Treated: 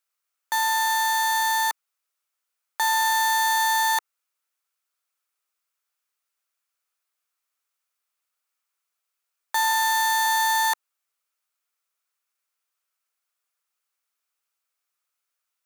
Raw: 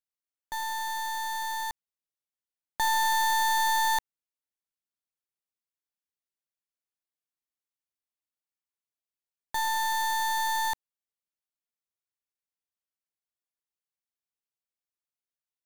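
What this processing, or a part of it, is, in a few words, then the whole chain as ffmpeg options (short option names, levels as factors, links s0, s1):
laptop speaker: -filter_complex "[0:a]highpass=f=430:w=0.5412,highpass=f=430:w=1.3066,equalizer=f=1300:t=o:w=0.52:g=11,equalizer=f=2400:t=o:w=0.53:g=5,alimiter=limit=0.0841:level=0:latency=1,bass=f=250:g=9,treble=f=4000:g=5,asettb=1/sr,asplit=3[s0][s1][s2];[s0]atrim=end=9.714[s3];[s1]atrim=start=9.71:end=10.26,asetpts=PTS-STARTPTS,afade=t=in:d=0.004:c=qsin,afade=t=out:st=0.546:d=0.004:c=qsin,highpass=530[s4];[s2]atrim=start=10.256[s5];[s3][s4]acrossfade=d=0.004:c1=hsin:c2=qsin[s6];[s6][s5]acrossfade=d=0.004:c1=qsin:c2=hsin,volume=2.24"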